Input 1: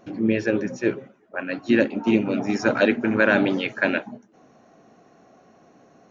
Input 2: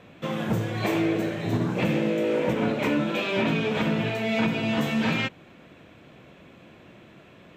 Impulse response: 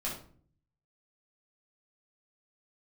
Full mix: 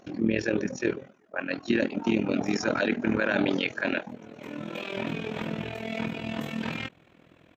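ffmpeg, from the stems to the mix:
-filter_complex "[0:a]equalizer=frequency=5100:width_type=o:width=2:gain=5,volume=0.5dB,asplit=2[link_01][link_02];[1:a]adelay=1600,volume=-4.5dB[link_03];[link_02]apad=whole_len=404092[link_04];[link_03][link_04]sidechaincompress=threshold=-35dB:ratio=10:attack=5.2:release=541[link_05];[link_01][link_05]amix=inputs=2:normalize=0,tremolo=f=41:d=0.788,alimiter=limit=-14dB:level=0:latency=1:release=25"

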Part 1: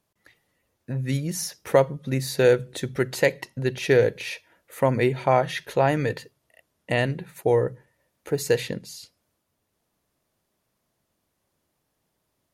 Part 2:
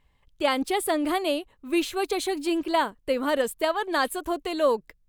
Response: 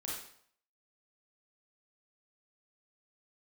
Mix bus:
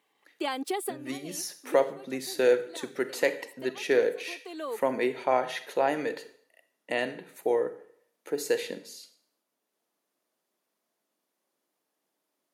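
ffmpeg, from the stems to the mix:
-filter_complex "[0:a]volume=-6.5dB,asplit=3[link_01][link_02][link_03];[link_02]volume=-9dB[link_04];[1:a]aecho=1:1:2.6:0.49,acompressor=threshold=-27dB:ratio=5,volume=-1dB[link_05];[link_03]apad=whole_len=224578[link_06];[link_05][link_06]sidechaincompress=threshold=-45dB:ratio=8:attack=31:release=509[link_07];[2:a]atrim=start_sample=2205[link_08];[link_04][link_08]afir=irnorm=-1:irlink=0[link_09];[link_01][link_07][link_09]amix=inputs=3:normalize=0,highpass=frequency=240:width=0.5412,highpass=frequency=240:width=1.3066"

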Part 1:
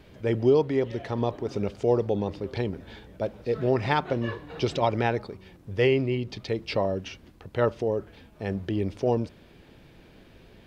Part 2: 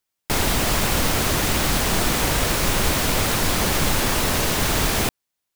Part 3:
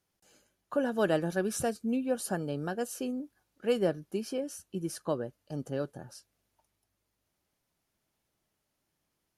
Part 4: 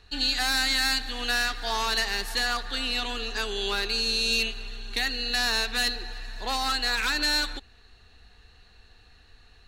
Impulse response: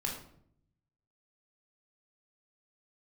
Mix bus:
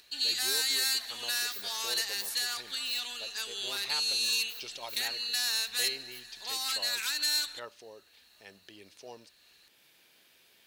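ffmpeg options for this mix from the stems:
-filter_complex "[0:a]volume=0dB[link_01];[2:a]highpass=580,acompressor=threshold=-41dB:ratio=2,aeval=exprs='abs(val(0))':channel_layout=same,volume=1.5dB[link_02];[3:a]lowshelf=frequency=380:gain=9,volume=1.5dB[link_03];[link_01][link_02][link_03]amix=inputs=3:normalize=0,aderivative,acompressor=mode=upward:threshold=-55dB:ratio=2.5"

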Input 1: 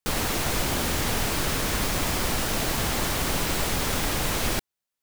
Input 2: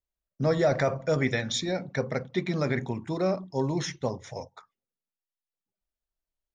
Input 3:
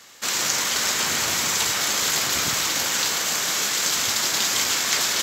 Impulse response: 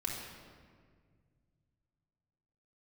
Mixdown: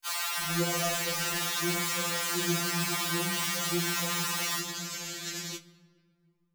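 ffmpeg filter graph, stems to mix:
-filter_complex "[0:a]highpass=frequency=930:width=0.5412,highpass=frequency=930:width=1.3066,volume=2dB,asplit=2[link_01][link_02];[link_02]volume=-8dB[link_03];[1:a]volume=-1dB,asplit=2[link_04][link_05];[link_05]volume=-12dB[link_06];[2:a]asubboost=boost=9.5:cutoff=250,flanger=delay=8.1:depth=9.5:regen=49:speed=1.6:shape=triangular,adelay=350,volume=-10.5dB,asplit=2[link_07][link_08];[link_08]volume=-14.5dB[link_09];[link_01][link_04]amix=inputs=2:normalize=0,alimiter=level_in=3dB:limit=-24dB:level=0:latency=1,volume=-3dB,volume=0dB[link_10];[3:a]atrim=start_sample=2205[link_11];[link_03][link_06][link_09]amix=inputs=3:normalize=0[link_12];[link_12][link_11]afir=irnorm=-1:irlink=0[link_13];[link_07][link_10][link_13]amix=inputs=3:normalize=0,afftfilt=real='re*2.83*eq(mod(b,8),0)':imag='im*2.83*eq(mod(b,8),0)':win_size=2048:overlap=0.75"

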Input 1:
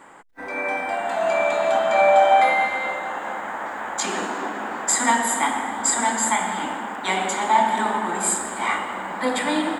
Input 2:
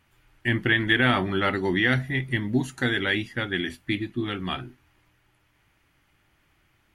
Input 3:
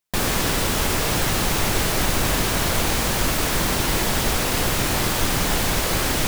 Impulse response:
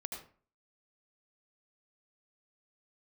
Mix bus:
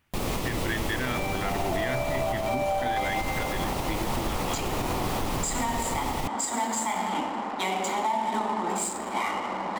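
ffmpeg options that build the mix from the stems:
-filter_complex "[0:a]bandreject=frequency=3600:width=20,adynamicsmooth=sensitivity=6.5:basefreq=2200,adelay=550,volume=0.5dB[link_01];[1:a]volume=-5dB[link_02];[2:a]acrossover=split=2600[link_03][link_04];[link_04]acompressor=threshold=-31dB:ratio=4:attack=1:release=60[link_05];[link_03][link_05]amix=inputs=2:normalize=0,volume=-2.5dB[link_06];[link_01][link_06]amix=inputs=2:normalize=0,equalizer=frequency=1600:width=3.1:gain=-11.5,alimiter=limit=-14dB:level=0:latency=1:release=337,volume=0dB[link_07];[link_02][link_07]amix=inputs=2:normalize=0,alimiter=limit=-18.5dB:level=0:latency=1:release=126"

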